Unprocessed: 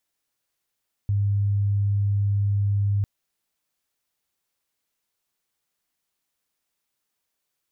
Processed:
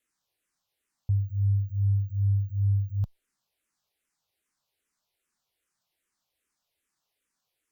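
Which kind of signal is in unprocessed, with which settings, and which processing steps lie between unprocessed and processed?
tone sine 101 Hz −19 dBFS 1.95 s
bad sample-rate conversion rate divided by 2×, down none, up hold
frequency shifter mixed with the dry sound −2.5 Hz

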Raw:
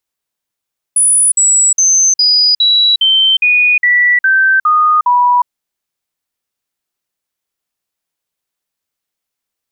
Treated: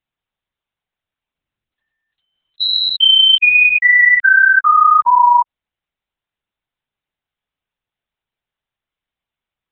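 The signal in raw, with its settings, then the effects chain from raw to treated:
stepped sweep 9,860 Hz down, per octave 3, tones 11, 0.36 s, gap 0.05 s −6.5 dBFS
linear-prediction vocoder at 8 kHz whisper

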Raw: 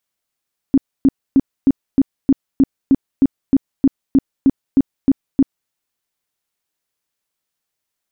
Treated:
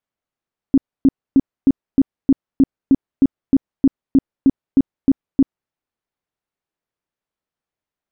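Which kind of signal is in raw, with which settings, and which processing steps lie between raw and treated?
tone bursts 271 Hz, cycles 10, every 0.31 s, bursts 16, −7 dBFS
low-pass filter 1,100 Hz 6 dB per octave

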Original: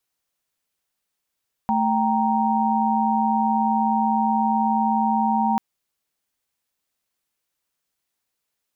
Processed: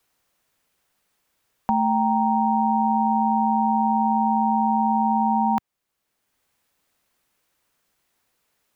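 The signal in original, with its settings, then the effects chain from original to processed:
held notes A3/G5/A#5 sine, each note −22 dBFS 3.89 s
multiband upward and downward compressor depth 40%

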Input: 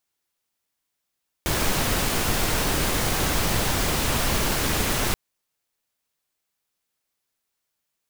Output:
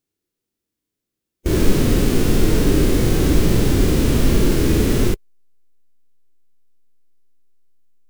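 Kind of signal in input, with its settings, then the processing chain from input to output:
noise pink, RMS −23 dBFS 3.68 s
low shelf with overshoot 540 Hz +12 dB, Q 1.5
harmonic and percussive parts rebalanced percussive −15 dB
in parallel at −9 dB: slack as between gear wheels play −32.5 dBFS

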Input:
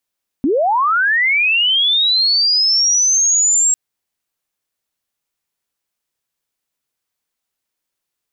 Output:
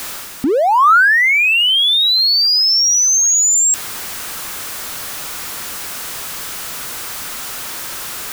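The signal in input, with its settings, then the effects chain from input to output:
glide linear 240 Hz → 7,600 Hz −12 dBFS → −10.5 dBFS 3.30 s
converter with a step at zero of −27 dBFS
parametric band 1,300 Hz +5.5 dB 0.79 octaves
reversed playback
upward compression, threshold −21 dBFS
reversed playback

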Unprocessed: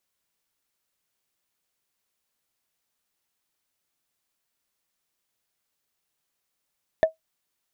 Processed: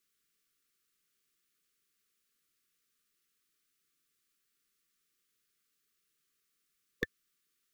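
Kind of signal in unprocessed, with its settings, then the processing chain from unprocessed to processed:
struck wood, lowest mode 641 Hz, decay 0.13 s, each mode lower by 11 dB, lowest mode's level −10 dB
linear-phase brick-wall band-stop 500–1,100 Hz
parametric band 82 Hz −13.5 dB 0.5 octaves

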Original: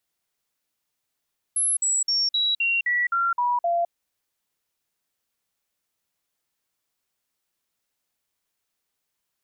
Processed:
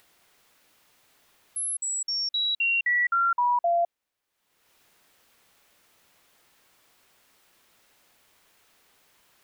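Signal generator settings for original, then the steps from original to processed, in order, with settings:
stepped sweep 11,000 Hz down, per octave 2, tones 9, 0.21 s, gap 0.05 s −19.5 dBFS
bass and treble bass −4 dB, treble −7 dB
upward compression, threshold −45 dBFS

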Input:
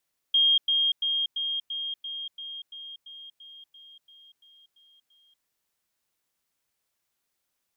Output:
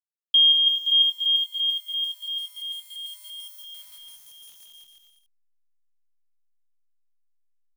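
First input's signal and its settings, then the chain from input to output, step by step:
level staircase 3,230 Hz −17.5 dBFS, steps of −3 dB, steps 15, 0.24 s 0.10 s
hold until the input has moved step −50 dBFS
spectral tilt +3 dB per octave
bouncing-ball delay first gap 180 ms, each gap 0.8×, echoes 5

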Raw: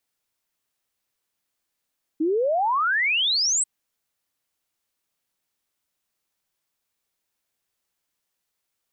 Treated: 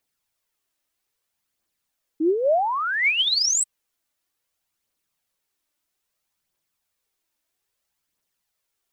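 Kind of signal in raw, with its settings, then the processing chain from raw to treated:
exponential sine sweep 300 Hz → 8,300 Hz 1.44 s −19 dBFS
phase shifter 0.61 Hz, delay 3.5 ms, feedback 40%

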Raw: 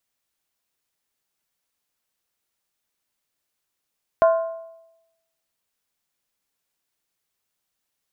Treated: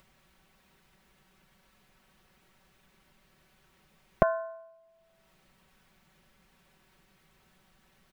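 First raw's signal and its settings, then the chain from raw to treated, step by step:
struck skin length 1.74 s, lowest mode 659 Hz, decay 0.92 s, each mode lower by 8.5 dB, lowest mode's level −10.5 dB
bass and treble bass +11 dB, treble −15 dB
comb filter 5.3 ms, depth 71%
upward compression, threshold −49 dBFS

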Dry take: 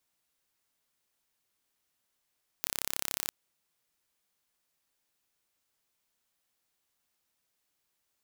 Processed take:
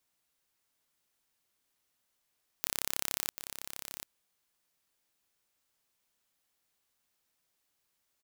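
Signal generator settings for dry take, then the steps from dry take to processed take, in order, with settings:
impulse train 33.9 per second, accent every 0, −4.5 dBFS 0.66 s
single-tap delay 740 ms −9 dB

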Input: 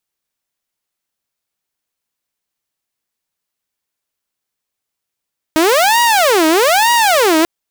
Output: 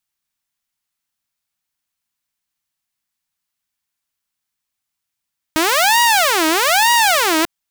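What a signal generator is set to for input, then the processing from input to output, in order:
siren wail 313–953 Hz 1.1 per second saw −6.5 dBFS 1.89 s
parametric band 460 Hz −13 dB 0.91 octaves

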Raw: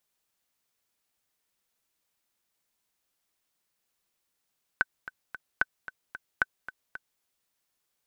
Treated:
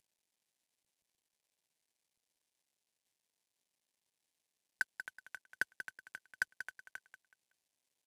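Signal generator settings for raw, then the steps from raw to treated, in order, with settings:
click track 224 BPM, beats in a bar 3, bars 3, 1,520 Hz, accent 15.5 dB −9.5 dBFS
variable-slope delta modulation 64 kbit/s
parametric band 1,300 Hz −11 dB 0.45 octaves
on a send: repeating echo 187 ms, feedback 27%, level −10.5 dB

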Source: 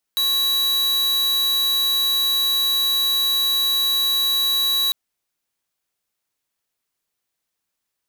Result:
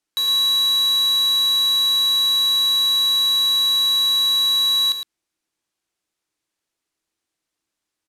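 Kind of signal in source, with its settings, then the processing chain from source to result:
tone square 3,910 Hz −19.5 dBFS 4.75 s
low-pass filter 9,800 Hz 12 dB per octave
parametric band 320 Hz +11 dB 0.28 octaves
on a send: single-tap delay 110 ms −8 dB

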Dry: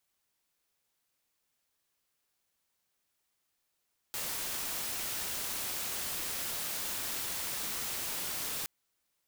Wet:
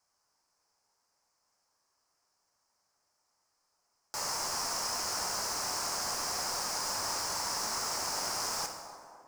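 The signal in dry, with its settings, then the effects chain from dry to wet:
noise white, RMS −36.5 dBFS 4.52 s
drawn EQ curve 360 Hz 0 dB, 970 Hz +11 dB, 3,600 Hz −11 dB, 5,100 Hz +10 dB, 14,000 Hz −11 dB
delay with a band-pass on its return 254 ms, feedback 60%, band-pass 530 Hz, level −10.5 dB
dense smooth reverb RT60 1.6 s, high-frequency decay 0.7×, DRR 4 dB

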